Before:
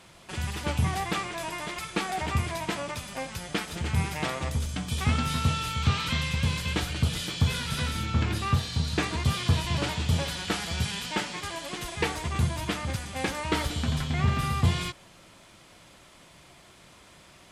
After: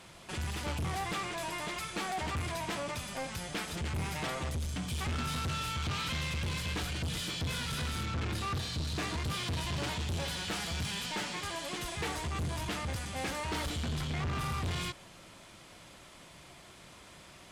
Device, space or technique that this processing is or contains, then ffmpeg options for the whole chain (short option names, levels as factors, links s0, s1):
saturation between pre-emphasis and de-emphasis: -af "highshelf=f=11000:g=10,asoftclip=type=tanh:threshold=0.0266,highshelf=f=11000:g=-10"